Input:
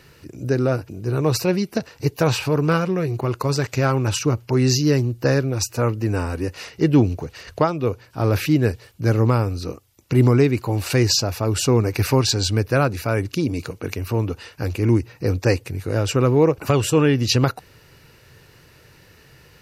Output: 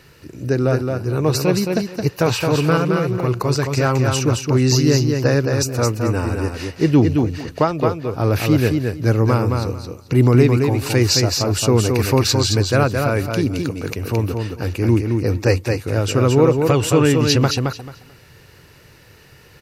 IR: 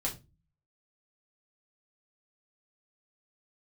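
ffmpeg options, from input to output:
-af "aecho=1:1:219|438|657:0.596|0.113|0.0215,volume=1.5dB"

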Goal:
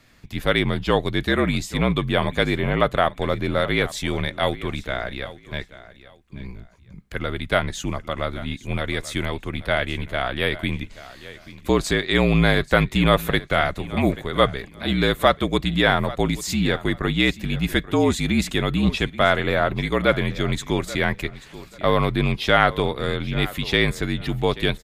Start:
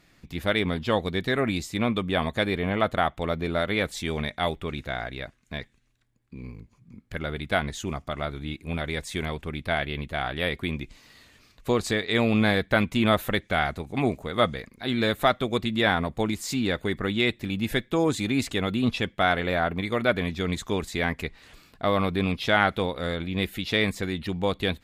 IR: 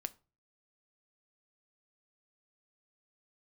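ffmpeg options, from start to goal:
-af "afreqshift=-50,aecho=1:1:834|1668:0.141|0.0311,volume=4.5dB"

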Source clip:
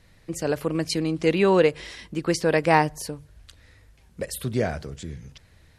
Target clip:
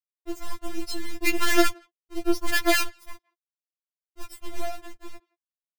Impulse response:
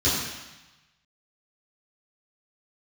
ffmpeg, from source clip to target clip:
-filter_complex "[0:a]afftdn=noise_reduction=20:noise_floor=-31,acrusher=bits=3:dc=4:mix=0:aa=0.000001,asplit=2[link_01][link_02];[link_02]adelay=170,highpass=300,lowpass=3400,asoftclip=type=hard:threshold=-14dB,volume=-26dB[link_03];[link_01][link_03]amix=inputs=2:normalize=0,afftfilt=real='re*4*eq(mod(b,16),0)':imag='im*4*eq(mod(b,16),0)':win_size=2048:overlap=0.75"

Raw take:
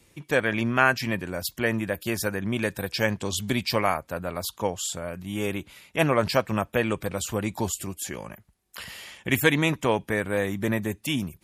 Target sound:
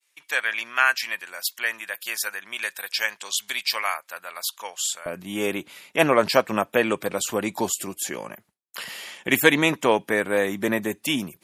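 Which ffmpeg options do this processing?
ffmpeg -i in.wav -af "asetnsamples=nb_out_samples=441:pad=0,asendcmd='5.06 highpass f 250',highpass=1400,agate=range=-33dB:threshold=-55dB:ratio=3:detection=peak,volume=4.5dB" out.wav

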